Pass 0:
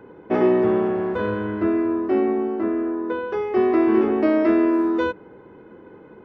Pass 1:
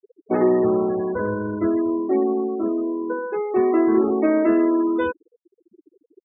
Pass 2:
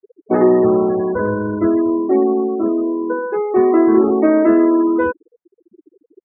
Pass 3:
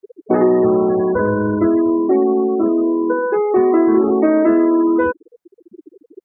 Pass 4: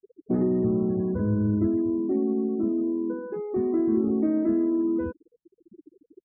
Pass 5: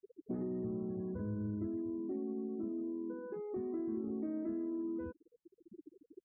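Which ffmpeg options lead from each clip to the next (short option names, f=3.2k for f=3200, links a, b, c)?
-af "afftfilt=real='re*gte(hypot(re,im),0.0562)':imag='im*gte(hypot(re,im),0.0562)':win_size=1024:overlap=0.75"
-af "lowpass=f=2k:w=0.5412,lowpass=f=2k:w=1.3066,volume=5.5dB"
-af "acompressor=threshold=-26dB:ratio=2,volume=8dB"
-af "firequalizer=gain_entry='entry(160,0);entry(430,-16);entry(890,-23)':delay=0.05:min_phase=1"
-af "acompressor=threshold=-41dB:ratio=2,volume=-4dB"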